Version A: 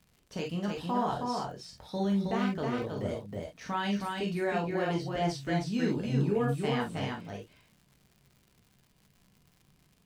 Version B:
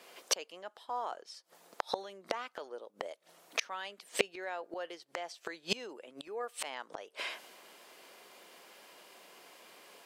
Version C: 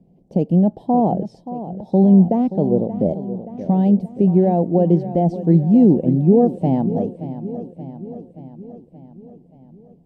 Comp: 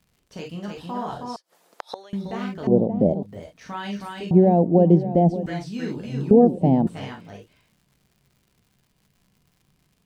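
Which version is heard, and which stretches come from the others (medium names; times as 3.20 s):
A
1.36–2.13 s: from B
2.67–3.23 s: from C
4.31–5.46 s: from C
6.31–6.87 s: from C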